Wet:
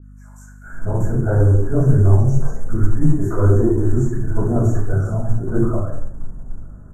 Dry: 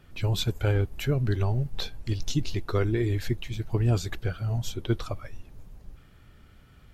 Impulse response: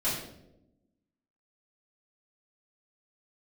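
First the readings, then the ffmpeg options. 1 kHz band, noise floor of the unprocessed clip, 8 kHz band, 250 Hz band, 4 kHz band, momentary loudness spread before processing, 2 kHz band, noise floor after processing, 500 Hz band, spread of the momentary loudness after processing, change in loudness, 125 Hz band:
+8.0 dB, -54 dBFS, no reading, +11.5 dB, under -25 dB, 7 LU, +1.5 dB, -41 dBFS, +10.0 dB, 17 LU, +10.5 dB, +10.5 dB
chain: -filter_complex "[0:a]acrossover=split=300|4000[s0][s1][s2];[s2]alimiter=level_in=3.35:limit=0.0631:level=0:latency=1:release=351,volume=0.299[s3];[s0][s1][s3]amix=inputs=3:normalize=0,acrossover=split=1700[s4][s5];[s4]adelay=620[s6];[s6][s5]amix=inputs=2:normalize=0[s7];[1:a]atrim=start_sample=2205,afade=t=out:st=0.31:d=0.01,atrim=end_sample=14112[s8];[s7][s8]afir=irnorm=-1:irlink=0,asplit=2[s9][s10];[s10]asoftclip=type=hard:threshold=0.178,volume=0.335[s11];[s9][s11]amix=inputs=2:normalize=0,acrusher=bits=8:mode=log:mix=0:aa=0.000001,asuperstop=centerf=3300:order=12:qfactor=0.65,highshelf=f=5700:g=-4.5,flanger=delay=7.4:depth=9.4:regen=-45:speed=1.4:shape=sinusoidal,lowpass=8200,bandreject=f=60:t=h:w=6,bandreject=f=120:t=h:w=6,aeval=exprs='val(0)+0.00794*(sin(2*PI*50*n/s)+sin(2*PI*2*50*n/s)/2+sin(2*PI*3*50*n/s)/3+sin(2*PI*4*50*n/s)/4+sin(2*PI*5*50*n/s)/5)':c=same,adynamicequalizer=threshold=0.00631:dfrequency=1700:dqfactor=0.7:tfrequency=1700:tqfactor=0.7:attack=5:release=100:ratio=0.375:range=2:mode=boostabove:tftype=highshelf,volume=1.33"

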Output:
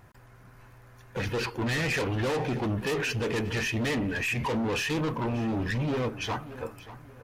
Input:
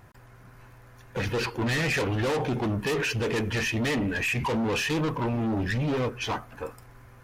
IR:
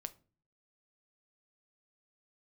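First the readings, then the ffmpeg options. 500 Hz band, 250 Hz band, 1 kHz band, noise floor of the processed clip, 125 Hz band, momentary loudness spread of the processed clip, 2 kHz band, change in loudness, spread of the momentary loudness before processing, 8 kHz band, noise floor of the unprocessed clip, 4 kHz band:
-2.0 dB, -2.0 dB, -2.0 dB, -53 dBFS, -1.5 dB, 7 LU, -2.0 dB, -2.0 dB, 6 LU, -2.0 dB, -52 dBFS, -2.0 dB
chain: -filter_complex "[0:a]asplit=2[s0][s1];[s1]adelay=584,lowpass=f=4100:p=1,volume=0.178,asplit=2[s2][s3];[s3]adelay=584,lowpass=f=4100:p=1,volume=0.33,asplit=2[s4][s5];[s5]adelay=584,lowpass=f=4100:p=1,volume=0.33[s6];[s0][s2][s4][s6]amix=inputs=4:normalize=0,volume=0.794"

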